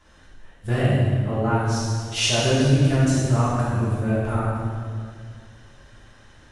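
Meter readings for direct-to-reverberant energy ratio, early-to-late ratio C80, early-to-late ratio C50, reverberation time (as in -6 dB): -9.0 dB, 0.0 dB, -2.5 dB, 2.0 s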